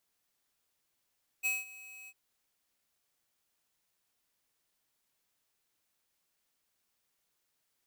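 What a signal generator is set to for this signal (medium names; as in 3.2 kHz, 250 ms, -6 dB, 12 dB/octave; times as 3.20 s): ADSR square 2.55 kHz, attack 28 ms, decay 187 ms, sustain -20 dB, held 0.65 s, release 51 ms -30 dBFS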